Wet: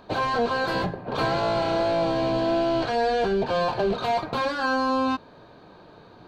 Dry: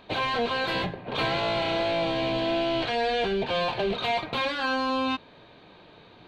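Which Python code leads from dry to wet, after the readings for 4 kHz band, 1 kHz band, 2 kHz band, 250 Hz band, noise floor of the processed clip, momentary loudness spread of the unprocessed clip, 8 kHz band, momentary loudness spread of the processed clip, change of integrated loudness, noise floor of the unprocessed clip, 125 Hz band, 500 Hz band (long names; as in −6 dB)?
−4.0 dB, +3.5 dB, 0.0 dB, +3.5 dB, −50 dBFS, 2 LU, can't be measured, 4 LU, +2.5 dB, −52 dBFS, +3.5 dB, +3.5 dB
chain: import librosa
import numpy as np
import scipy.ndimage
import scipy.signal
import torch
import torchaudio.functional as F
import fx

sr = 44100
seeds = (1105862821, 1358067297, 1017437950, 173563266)

y = fx.band_shelf(x, sr, hz=2700.0, db=-10.0, octaves=1.2)
y = F.gain(torch.from_numpy(y), 3.5).numpy()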